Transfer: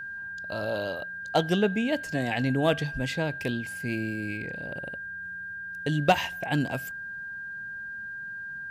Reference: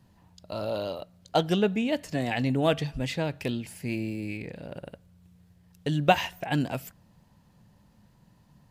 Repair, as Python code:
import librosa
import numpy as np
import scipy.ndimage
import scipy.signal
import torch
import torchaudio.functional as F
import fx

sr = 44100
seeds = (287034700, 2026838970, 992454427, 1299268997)

y = fx.fix_declip(x, sr, threshold_db=-12.0)
y = fx.notch(y, sr, hz=1600.0, q=30.0)